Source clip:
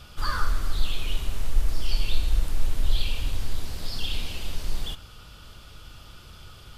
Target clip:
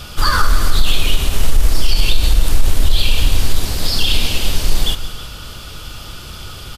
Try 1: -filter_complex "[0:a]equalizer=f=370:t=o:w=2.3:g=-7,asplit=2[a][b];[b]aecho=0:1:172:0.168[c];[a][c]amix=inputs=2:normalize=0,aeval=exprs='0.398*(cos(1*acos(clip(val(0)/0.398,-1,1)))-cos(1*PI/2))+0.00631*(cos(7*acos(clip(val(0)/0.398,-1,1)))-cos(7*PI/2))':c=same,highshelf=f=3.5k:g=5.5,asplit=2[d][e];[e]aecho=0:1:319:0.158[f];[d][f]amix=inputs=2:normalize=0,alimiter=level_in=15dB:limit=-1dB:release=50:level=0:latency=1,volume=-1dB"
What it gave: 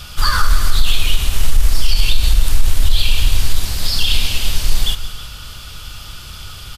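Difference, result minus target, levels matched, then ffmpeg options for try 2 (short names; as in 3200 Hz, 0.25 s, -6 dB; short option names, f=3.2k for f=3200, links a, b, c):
500 Hz band -7.0 dB
-filter_complex "[0:a]equalizer=f=370:t=o:w=2.3:g=2,asplit=2[a][b];[b]aecho=0:1:172:0.168[c];[a][c]amix=inputs=2:normalize=0,aeval=exprs='0.398*(cos(1*acos(clip(val(0)/0.398,-1,1)))-cos(1*PI/2))+0.00631*(cos(7*acos(clip(val(0)/0.398,-1,1)))-cos(7*PI/2))':c=same,highshelf=f=3.5k:g=5.5,asplit=2[d][e];[e]aecho=0:1:319:0.158[f];[d][f]amix=inputs=2:normalize=0,alimiter=level_in=15dB:limit=-1dB:release=50:level=0:latency=1,volume=-1dB"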